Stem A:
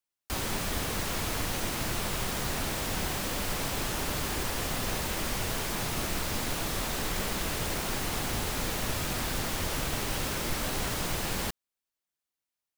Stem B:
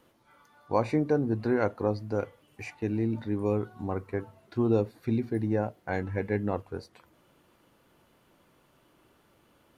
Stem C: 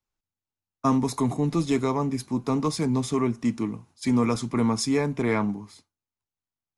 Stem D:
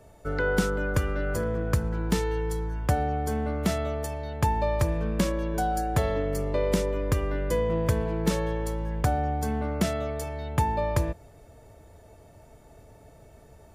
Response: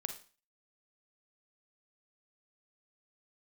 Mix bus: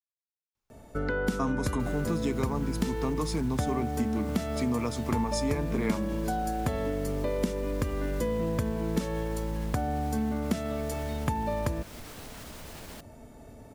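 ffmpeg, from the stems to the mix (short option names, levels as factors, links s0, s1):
-filter_complex "[0:a]alimiter=limit=0.0708:level=0:latency=1:release=41,adelay=1500,volume=0.251[s0];[2:a]adelay=550,volume=1.12[s1];[3:a]equalizer=f=240:t=o:w=0.38:g=12.5,adelay=700,volume=1.19[s2];[s0][s1][s2]amix=inputs=3:normalize=0,acompressor=threshold=0.0355:ratio=2.5"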